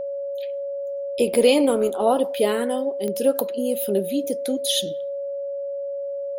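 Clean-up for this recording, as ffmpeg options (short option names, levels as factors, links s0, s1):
-af "adeclick=t=4,bandreject=f=560:w=30"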